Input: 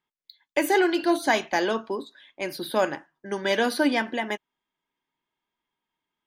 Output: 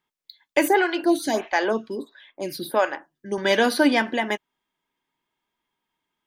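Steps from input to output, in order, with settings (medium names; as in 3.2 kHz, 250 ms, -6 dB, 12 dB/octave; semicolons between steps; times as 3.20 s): 0.68–3.38 s: lamp-driven phase shifter 1.5 Hz; trim +4 dB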